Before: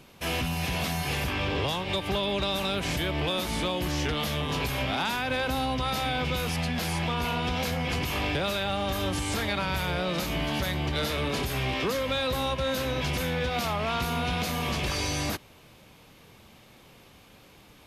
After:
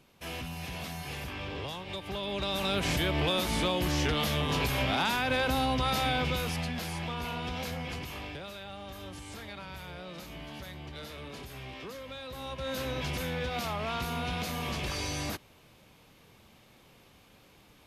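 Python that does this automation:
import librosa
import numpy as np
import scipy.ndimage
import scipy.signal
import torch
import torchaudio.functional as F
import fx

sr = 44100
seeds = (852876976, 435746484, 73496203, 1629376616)

y = fx.gain(x, sr, db=fx.line((2.06, -9.5), (2.78, 0.0), (6.11, 0.0), (6.91, -7.0), (7.76, -7.0), (8.48, -14.5), (12.28, -14.5), (12.79, -5.0)))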